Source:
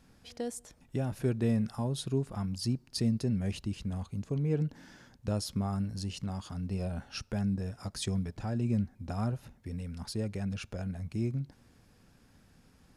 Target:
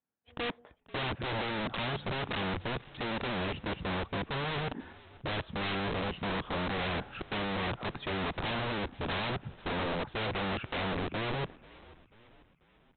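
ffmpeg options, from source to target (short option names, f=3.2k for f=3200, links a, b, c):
-filter_complex "[0:a]afwtdn=0.01,highpass=58,agate=range=-33dB:threshold=-57dB:ratio=3:detection=peak,highshelf=f=2.4k:g=-10.5,asplit=2[a][b];[b]highpass=f=720:p=1,volume=38dB,asoftclip=type=tanh:threshold=-18.5dB[c];[a][c]amix=inputs=2:normalize=0,lowpass=f=2k:p=1,volume=-6dB,aresample=8000,aeval=exprs='(mod(18.8*val(0)+1,2)-1)/18.8':c=same,aresample=44100,asplit=5[d][e][f][g][h];[e]adelay=489,afreqshift=-56,volume=-21dB[i];[f]adelay=978,afreqshift=-112,volume=-26.7dB[j];[g]adelay=1467,afreqshift=-168,volume=-32.4dB[k];[h]adelay=1956,afreqshift=-224,volume=-38dB[l];[d][i][j][k][l]amix=inputs=5:normalize=0,volume=-5dB"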